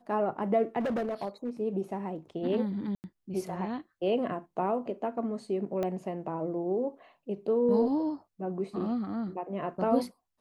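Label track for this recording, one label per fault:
0.790000	1.500000	clipped -27.5 dBFS
2.950000	3.040000	dropout 89 ms
5.830000	5.830000	pop -20 dBFS

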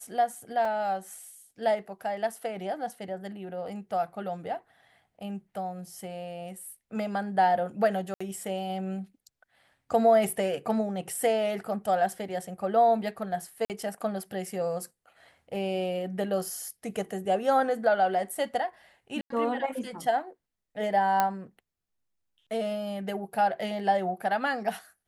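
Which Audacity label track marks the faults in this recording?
0.650000	0.650000	dropout 3.1 ms
8.140000	8.210000	dropout 65 ms
13.650000	13.700000	dropout 48 ms
19.210000	19.300000	dropout 93 ms
21.200000	21.200000	pop -10 dBFS

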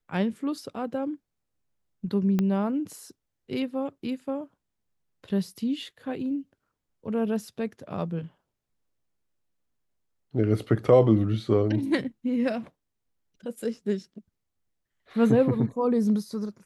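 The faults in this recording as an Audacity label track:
2.390000	2.390000	pop -14 dBFS

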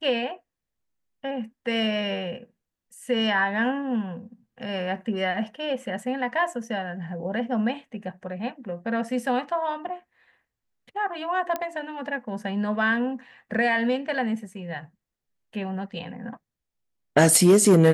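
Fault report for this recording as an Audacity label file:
11.560000	11.560000	pop -14 dBFS

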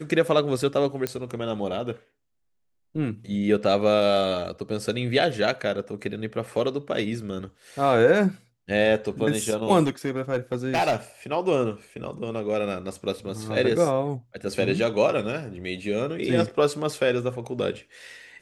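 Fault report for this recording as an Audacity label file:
1.070000	1.070000	pop -11 dBFS
9.840000	10.960000	clipped -18 dBFS

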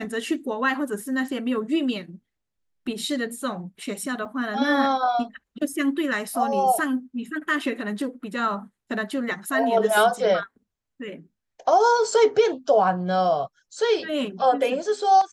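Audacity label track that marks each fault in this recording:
4.250000	4.250000	dropout 3.4 ms

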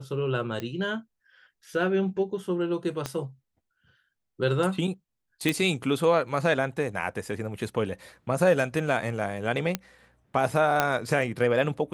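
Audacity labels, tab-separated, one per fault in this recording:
0.600000	0.600000	pop -19 dBFS
3.060000	3.060000	pop -15 dBFS
5.490000	5.490000	pop
9.750000	9.750000	pop -11 dBFS
10.800000	10.800000	pop -7 dBFS

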